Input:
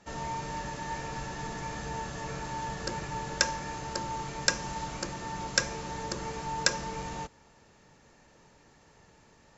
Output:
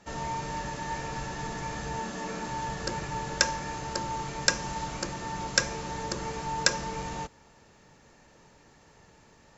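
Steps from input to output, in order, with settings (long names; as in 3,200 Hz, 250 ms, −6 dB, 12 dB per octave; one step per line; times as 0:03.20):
0:01.99–0:02.48: low shelf with overshoot 160 Hz −8.5 dB, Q 3
level +2 dB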